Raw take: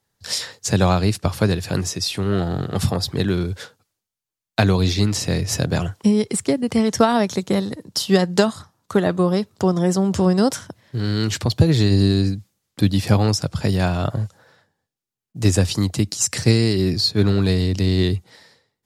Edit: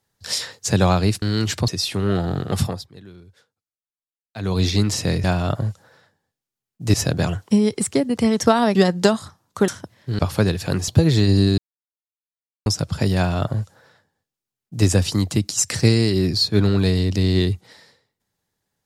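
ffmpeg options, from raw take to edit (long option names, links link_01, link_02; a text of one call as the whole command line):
ffmpeg -i in.wav -filter_complex "[0:a]asplit=13[link_01][link_02][link_03][link_04][link_05][link_06][link_07][link_08][link_09][link_10][link_11][link_12][link_13];[link_01]atrim=end=1.222[link_14];[link_02]atrim=start=11.048:end=11.512[link_15];[link_03]atrim=start=1.908:end=3.09,asetpts=PTS-STARTPTS,afade=type=out:start_time=0.912:duration=0.27:silence=0.0794328[link_16];[link_04]atrim=start=3.09:end=4.59,asetpts=PTS-STARTPTS,volume=-22dB[link_17];[link_05]atrim=start=4.59:end=5.472,asetpts=PTS-STARTPTS,afade=type=in:duration=0.27:silence=0.0794328[link_18];[link_06]atrim=start=13.788:end=15.492[link_19];[link_07]atrim=start=5.468:end=7.282[link_20];[link_08]atrim=start=8.088:end=9.022[link_21];[link_09]atrim=start=10.538:end=11.052[link_22];[link_10]atrim=start=1.218:end=1.912[link_23];[link_11]atrim=start=11.508:end=12.21,asetpts=PTS-STARTPTS,afade=type=out:start_time=0.698:duration=0.004:curve=hsin[link_24];[link_12]atrim=start=12.21:end=13.29,asetpts=PTS-STARTPTS,volume=0[link_25];[link_13]atrim=start=13.29,asetpts=PTS-STARTPTS,afade=type=in:duration=0.004:curve=hsin[link_26];[link_14][link_15]acrossfade=duration=0.004:curve1=hsin:curve2=hsin[link_27];[link_16][link_17][link_18]concat=n=3:v=0:a=1[link_28];[link_27][link_28]acrossfade=duration=0.004:curve1=hsin:curve2=hsin[link_29];[link_29][link_19]acrossfade=duration=0.004:curve1=hsin:curve2=hsin[link_30];[link_30][link_20]acrossfade=duration=0.004:curve1=hsin:curve2=hsin[link_31];[link_31][link_21]acrossfade=duration=0.004:curve1=hsin:curve2=hsin[link_32];[link_32][link_22]acrossfade=duration=0.004:curve1=hsin:curve2=hsin[link_33];[link_33][link_23]acrossfade=duration=0.004:curve1=hsin:curve2=hsin[link_34];[link_24][link_25][link_26]concat=n=3:v=0:a=1[link_35];[link_34][link_35]acrossfade=duration=0.004:curve1=hsin:curve2=hsin" out.wav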